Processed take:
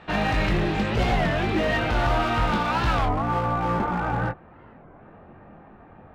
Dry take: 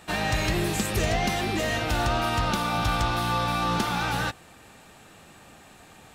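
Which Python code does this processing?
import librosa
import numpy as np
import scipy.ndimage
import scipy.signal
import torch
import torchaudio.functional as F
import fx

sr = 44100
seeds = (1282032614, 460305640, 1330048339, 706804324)

y = fx.bessel_lowpass(x, sr, hz=fx.steps((0.0, 2500.0), (3.07, 1100.0)), order=4)
y = np.clip(y, -10.0 ** (-24.0 / 20.0), 10.0 ** (-24.0 / 20.0))
y = fx.chorus_voices(y, sr, voices=4, hz=0.73, base_ms=22, depth_ms=3.1, mix_pct=35)
y = fx.record_warp(y, sr, rpm=33.33, depth_cents=250.0)
y = F.gain(torch.from_numpy(y), 7.5).numpy()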